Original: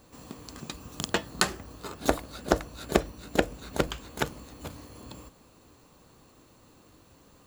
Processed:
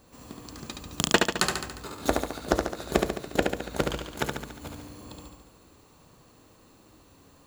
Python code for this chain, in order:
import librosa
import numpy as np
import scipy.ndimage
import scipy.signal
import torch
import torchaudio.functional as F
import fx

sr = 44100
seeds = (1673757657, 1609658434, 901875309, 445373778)

y = fx.transient(x, sr, attack_db=8, sustain_db=-4, at=(0.9, 1.41))
y = fx.echo_feedback(y, sr, ms=71, feedback_pct=59, wet_db=-4)
y = F.gain(torch.from_numpy(y), -1.0).numpy()